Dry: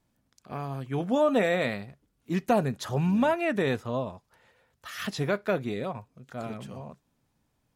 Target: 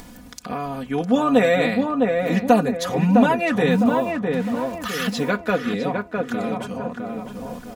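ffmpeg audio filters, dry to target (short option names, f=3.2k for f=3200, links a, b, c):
-filter_complex "[0:a]aecho=1:1:4.1:0.79,acompressor=mode=upward:threshold=-27dB:ratio=2.5,asettb=1/sr,asplit=3[a][b][c];[a]atrim=end=3.714[d];[b]atrim=start=3.71:end=5.3,asetpts=PTS-STARTPTS,afade=t=in:d=0.004:c=qsin,afade=t=out:st=1.586:d=0.004:c=qsin,acrusher=bits=7:mix=0:aa=0.5[e];[c]atrim=start=5.296[f];[d][e]acrossfade=d=0.004:c1=hsin:c2=qsin[g];[g][f]acrossfade=d=0.004:c1=qsin:c2=hsin,asplit=2[h][i];[i]adelay=657,lowpass=f=1.6k:p=1,volume=-3dB,asplit=2[j][k];[k]adelay=657,lowpass=f=1.6k:p=1,volume=0.44,asplit=2[l][m];[m]adelay=657,lowpass=f=1.6k:p=1,volume=0.44,asplit=2[n][o];[o]adelay=657,lowpass=f=1.6k:p=1,volume=0.44,asplit=2[p][q];[q]adelay=657,lowpass=f=1.6k:p=1,volume=0.44,asplit=2[r][s];[s]adelay=657,lowpass=f=1.6k:p=1,volume=0.44[t];[h][j][l][n][p][r][t]amix=inputs=7:normalize=0,volume=4.5dB"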